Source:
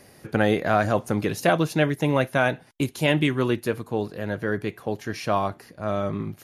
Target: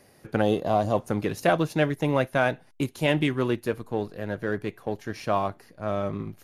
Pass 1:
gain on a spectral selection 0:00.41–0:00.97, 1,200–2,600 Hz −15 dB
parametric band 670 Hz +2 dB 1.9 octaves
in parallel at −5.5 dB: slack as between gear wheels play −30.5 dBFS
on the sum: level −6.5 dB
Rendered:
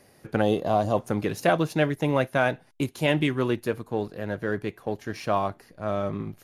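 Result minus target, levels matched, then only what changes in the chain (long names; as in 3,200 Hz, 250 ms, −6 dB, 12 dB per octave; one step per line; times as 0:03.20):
slack as between gear wheels: distortion −5 dB
change: slack as between gear wheels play −24.5 dBFS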